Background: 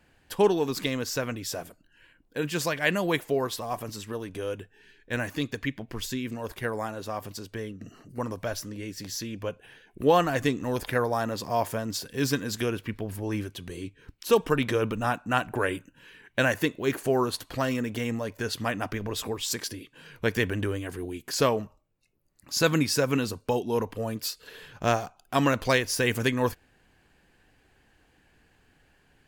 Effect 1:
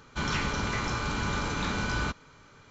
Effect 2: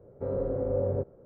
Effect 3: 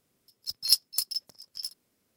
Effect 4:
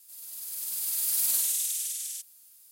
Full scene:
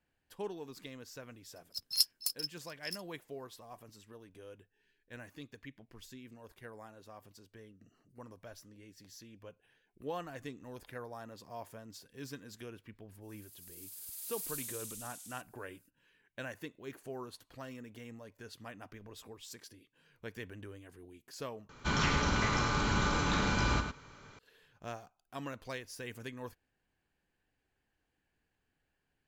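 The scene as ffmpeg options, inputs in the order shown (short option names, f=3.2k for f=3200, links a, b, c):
-filter_complex "[0:a]volume=-19dB[a];[1:a]asplit=2[b][c];[c]adelay=105,volume=-7dB,highshelf=f=4k:g=-2.36[d];[b][d]amix=inputs=2:normalize=0[e];[a]asplit=2[f][g];[f]atrim=end=21.694[h];[e]atrim=end=2.7,asetpts=PTS-STARTPTS,volume=-1dB[i];[g]atrim=start=24.386[j];[3:a]atrim=end=2.16,asetpts=PTS-STARTPTS,volume=-6.5dB,afade=t=in:d=0.004:c=hsin,afade=t=out:st=2.156:d=0.004:c=hsin,adelay=1280[k];[4:a]atrim=end=2.71,asetpts=PTS-STARTPTS,volume=-16dB,afade=t=in:d=0.05,afade=t=out:st=2.66:d=0.05,adelay=13200[l];[h][i]acrossfade=d=0.004:c1=hsin:c2=hsin[m];[m][j]acrossfade=d=0.004:c1=hsin:c2=hsin[n];[n][k][l]amix=inputs=3:normalize=0"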